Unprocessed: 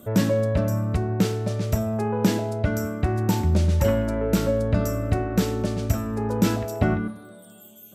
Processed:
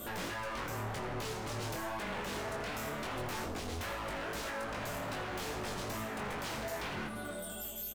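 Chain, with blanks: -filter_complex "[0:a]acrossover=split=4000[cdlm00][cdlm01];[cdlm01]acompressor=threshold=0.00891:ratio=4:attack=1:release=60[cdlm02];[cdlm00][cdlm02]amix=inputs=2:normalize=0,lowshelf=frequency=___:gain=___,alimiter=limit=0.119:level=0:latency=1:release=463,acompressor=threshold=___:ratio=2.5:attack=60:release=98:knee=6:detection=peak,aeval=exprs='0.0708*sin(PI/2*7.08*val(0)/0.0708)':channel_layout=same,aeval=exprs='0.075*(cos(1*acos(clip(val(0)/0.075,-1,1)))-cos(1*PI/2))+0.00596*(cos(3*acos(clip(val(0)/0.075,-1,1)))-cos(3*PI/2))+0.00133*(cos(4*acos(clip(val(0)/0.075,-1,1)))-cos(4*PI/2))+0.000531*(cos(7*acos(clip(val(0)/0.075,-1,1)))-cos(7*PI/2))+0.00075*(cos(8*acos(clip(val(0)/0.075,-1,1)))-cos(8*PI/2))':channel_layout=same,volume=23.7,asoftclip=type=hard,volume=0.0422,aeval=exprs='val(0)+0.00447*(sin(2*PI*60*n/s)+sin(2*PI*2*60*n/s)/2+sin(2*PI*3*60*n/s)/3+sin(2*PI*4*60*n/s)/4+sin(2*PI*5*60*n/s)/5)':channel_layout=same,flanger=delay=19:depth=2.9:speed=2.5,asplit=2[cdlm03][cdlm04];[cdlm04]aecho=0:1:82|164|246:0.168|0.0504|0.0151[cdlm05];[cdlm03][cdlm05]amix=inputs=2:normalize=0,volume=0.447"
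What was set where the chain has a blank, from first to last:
360, -12, 0.00708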